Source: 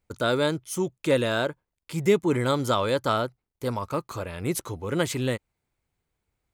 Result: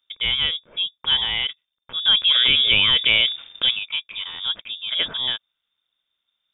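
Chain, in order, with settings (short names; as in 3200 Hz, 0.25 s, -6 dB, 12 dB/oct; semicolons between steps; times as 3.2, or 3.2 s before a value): inverted band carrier 3600 Hz; 2.05–3.71 fast leveller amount 70%; gain +1.5 dB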